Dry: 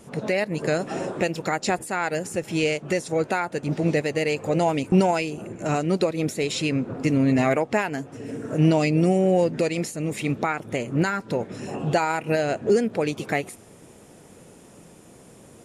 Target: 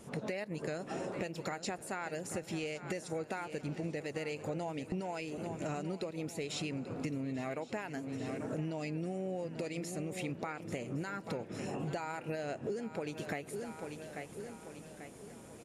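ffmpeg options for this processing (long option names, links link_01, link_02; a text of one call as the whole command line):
ffmpeg -i in.wav -filter_complex "[0:a]asplit=2[link_01][link_02];[link_02]aecho=0:1:840|1680|2520|3360:0.168|0.0772|0.0355|0.0163[link_03];[link_01][link_03]amix=inputs=2:normalize=0,acompressor=threshold=-30dB:ratio=10,asplit=2[link_04][link_05];[link_05]aecho=0:1:1112:0.0944[link_06];[link_04][link_06]amix=inputs=2:normalize=0,volume=-5dB" out.wav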